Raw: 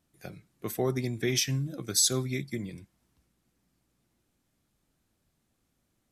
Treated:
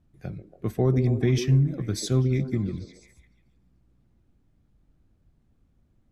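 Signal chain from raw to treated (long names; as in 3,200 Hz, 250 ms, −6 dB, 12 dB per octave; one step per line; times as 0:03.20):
RIAA equalisation playback
echo through a band-pass that steps 140 ms, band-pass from 350 Hz, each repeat 0.7 octaves, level −6 dB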